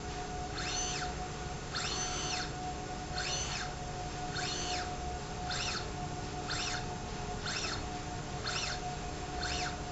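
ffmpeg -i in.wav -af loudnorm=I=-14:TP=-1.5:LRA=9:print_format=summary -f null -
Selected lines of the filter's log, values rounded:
Input Integrated:    -36.9 LUFS
Input True Peak:     -21.5 dBTP
Input LRA:             0.9 LU
Input Threshold:     -46.9 LUFS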